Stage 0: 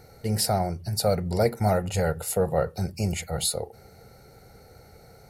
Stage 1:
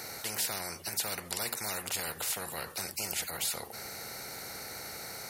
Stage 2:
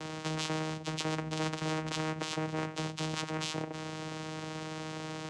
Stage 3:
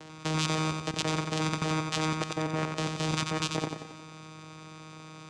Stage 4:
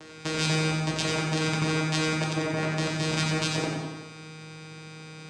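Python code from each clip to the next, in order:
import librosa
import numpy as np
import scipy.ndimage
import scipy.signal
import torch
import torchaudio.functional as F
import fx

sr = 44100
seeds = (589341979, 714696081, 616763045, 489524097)

y1 = fx.highpass(x, sr, hz=1100.0, slope=6)
y1 = fx.spectral_comp(y1, sr, ratio=4.0)
y2 = fx.vocoder(y1, sr, bands=4, carrier='saw', carrier_hz=157.0)
y2 = y2 * 10.0 ** (4.0 / 20.0)
y3 = fx.level_steps(y2, sr, step_db=18)
y3 = fx.echo_feedback(y3, sr, ms=90, feedback_pct=51, wet_db=-5.0)
y3 = y3 * 10.0 ** (6.5 / 20.0)
y4 = fx.rev_plate(y3, sr, seeds[0], rt60_s=0.97, hf_ratio=0.8, predelay_ms=0, drr_db=-2.0)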